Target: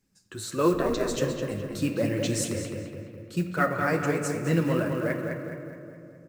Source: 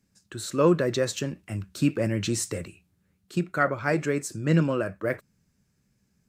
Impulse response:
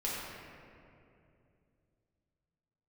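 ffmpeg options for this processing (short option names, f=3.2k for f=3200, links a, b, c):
-filter_complex "[0:a]flanger=delay=1.8:depth=9.5:regen=32:speed=1.4:shape=triangular,asplit=2[a][b];[b]adelay=209,lowpass=f=2.8k:p=1,volume=-4dB,asplit=2[c][d];[d]adelay=209,lowpass=f=2.8k:p=1,volume=0.53,asplit=2[e][f];[f]adelay=209,lowpass=f=2.8k:p=1,volume=0.53,asplit=2[g][h];[h]adelay=209,lowpass=f=2.8k:p=1,volume=0.53,asplit=2[i][j];[j]adelay=209,lowpass=f=2.8k:p=1,volume=0.53,asplit=2[k][l];[l]adelay=209,lowpass=f=2.8k:p=1,volume=0.53,asplit=2[m][n];[n]adelay=209,lowpass=f=2.8k:p=1,volume=0.53[o];[a][c][e][g][i][k][m][o]amix=inputs=8:normalize=0,acrusher=bits=7:mode=log:mix=0:aa=0.000001,asplit=3[p][q][r];[p]afade=t=out:st=0.73:d=0.02[s];[q]aeval=exprs='val(0)*sin(2*PI*110*n/s)':c=same,afade=t=in:st=0.73:d=0.02,afade=t=out:st=1.15:d=0.02[t];[r]afade=t=in:st=1.15:d=0.02[u];[s][t][u]amix=inputs=3:normalize=0,asplit=2[v][w];[1:a]atrim=start_sample=2205,highshelf=f=8.1k:g=8[x];[w][x]afir=irnorm=-1:irlink=0,volume=-10.5dB[y];[v][y]amix=inputs=2:normalize=0"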